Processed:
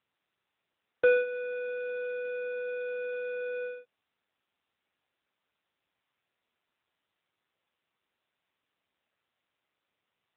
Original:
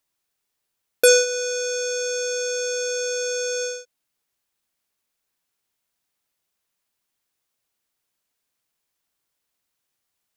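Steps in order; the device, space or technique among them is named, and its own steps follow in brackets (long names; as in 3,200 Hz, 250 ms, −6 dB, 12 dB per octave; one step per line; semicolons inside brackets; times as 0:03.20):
telephone (band-pass filter 350–3,100 Hz; level −6 dB; AMR narrowband 7.95 kbit/s 8,000 Hz)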